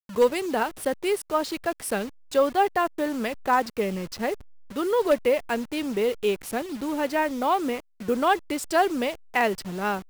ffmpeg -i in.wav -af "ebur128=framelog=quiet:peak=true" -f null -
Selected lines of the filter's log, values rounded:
Integrated loudness:
  I:         -25.8 LUFS
  Threshold: -35.8 LUFS
Loudness range:
  LRA:         1.1 LU
  Threshold: -45.9 LUFS
  LRA low:   -26.5 LUFS
  LRA high:  -25.4 LUFS
True peak:
  Peak:      -10.9 dBFS